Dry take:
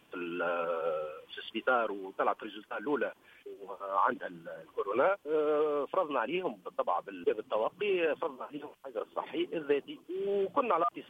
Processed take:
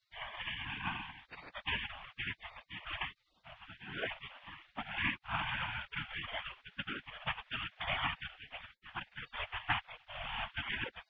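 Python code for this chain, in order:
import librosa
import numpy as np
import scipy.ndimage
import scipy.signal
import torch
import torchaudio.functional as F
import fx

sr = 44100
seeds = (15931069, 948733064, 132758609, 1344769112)

y = fx.whisperise(x, sr, seeds[0])
y = fx.spec_gate(y, sr, threshold_db=-25, keep='weak')
y = scipy.signal.sosfilt(scipy.signal.butter(4, 3300.0, 'lowpass', fs=sr, output='sos'), y)
y = y * librosa.db_to_amplitude(14.5)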